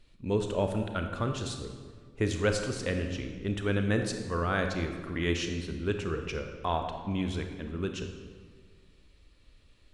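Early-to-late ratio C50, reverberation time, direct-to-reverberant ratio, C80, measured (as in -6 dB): 6.0 dB, 1.7 s, 5.0 dB, 7.5 dB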